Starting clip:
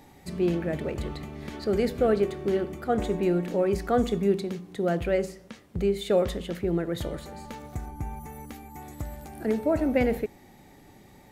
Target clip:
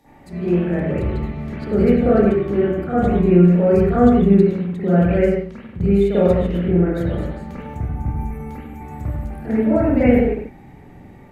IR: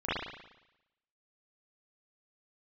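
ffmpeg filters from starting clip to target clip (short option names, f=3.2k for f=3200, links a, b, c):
-filter_complex "[0:a]acrossover=split=220|3800[a][b][c];[a]dynaudnorm=f=500:g=3:m=7dB[d];[d][b][c]amix=inputs=3:normalize=0[e];[1:a]atrim=start_sample=2205,afade=t=out:st=0.24:d=0.01,atrim=end_sample=11025,asetrate=34398,aresample=44100[f];[e][f]afir=irnorm=-1:irlink=0,volume=-4.5dB"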